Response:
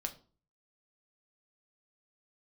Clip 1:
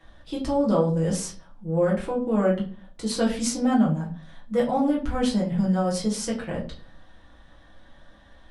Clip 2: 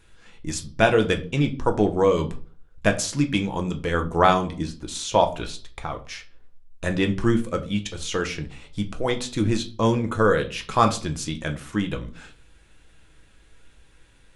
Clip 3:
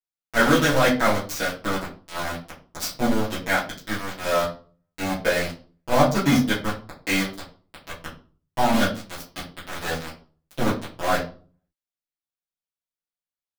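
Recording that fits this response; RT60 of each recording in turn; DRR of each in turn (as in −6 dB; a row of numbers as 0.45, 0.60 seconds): 2; 0.40, 0.40, 0.40 seconds; −4.5, 4.5, −12.0 decibels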